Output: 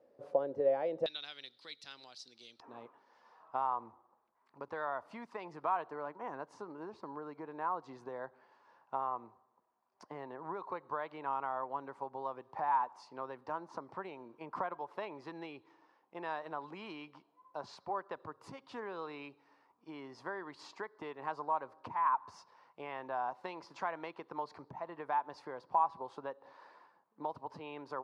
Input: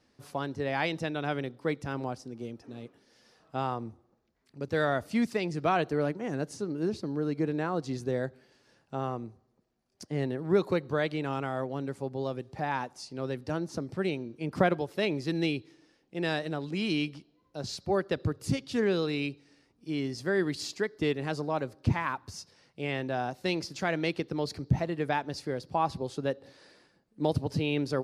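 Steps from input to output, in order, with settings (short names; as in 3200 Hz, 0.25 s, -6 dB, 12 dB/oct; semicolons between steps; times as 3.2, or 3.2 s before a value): compressor 5:1, threshold -34 dBFS, peak gain reduction 14 dB; band-pass 540 Hz, Q 5.9, from 1.06 s 4000 Hz, from 2.6 s 990 Hz; gain +14 dB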